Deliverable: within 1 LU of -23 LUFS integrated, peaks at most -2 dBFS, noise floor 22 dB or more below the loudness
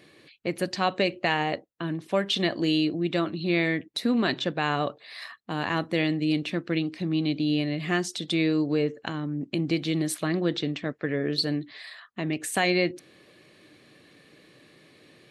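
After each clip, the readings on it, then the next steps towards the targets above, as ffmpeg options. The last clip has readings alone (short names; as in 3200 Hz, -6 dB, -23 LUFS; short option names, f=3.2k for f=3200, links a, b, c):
loudness -27.0 LUFS; peak -10.0 dBFS; loudness target -23.0 LUFS
-> -af "volume=4dB"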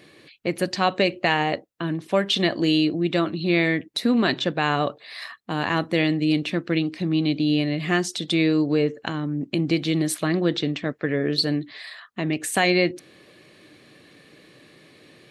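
loudness -23.0 LUFS; peak -6.0 dBFS; noise floor -53 dBFS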